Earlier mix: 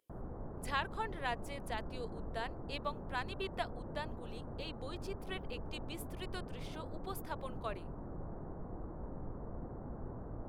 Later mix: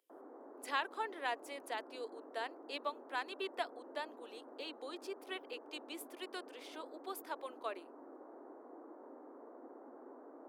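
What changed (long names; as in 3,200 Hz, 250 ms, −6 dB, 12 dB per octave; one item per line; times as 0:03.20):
background −3.5 dB
master: add Butterworth high-pass 260 Hz 72 dB per octave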